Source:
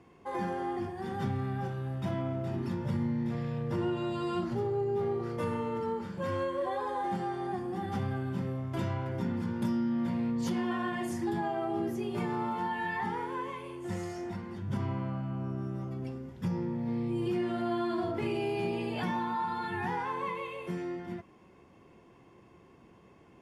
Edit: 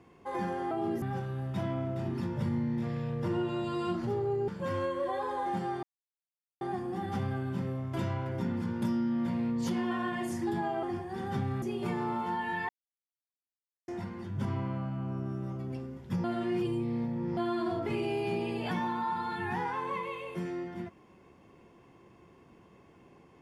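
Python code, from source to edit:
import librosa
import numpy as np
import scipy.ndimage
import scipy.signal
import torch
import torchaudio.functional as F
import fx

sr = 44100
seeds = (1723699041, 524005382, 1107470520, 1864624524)

y = fx.edit(x, sr, fx.swap(start_s=0.71, length_s=0.79, other_s=11.63, other_length_s=0.31),
    fx.cut(start_s=4.96, length_s=1.1),
    fx.insert_silence(at_s=7.41, length_s=0.78),
    fx.silence(start_s=13.01, length_s=1.19),
    fx.reverse_span(start_s=16.56, length_s=1.13), tone=tone)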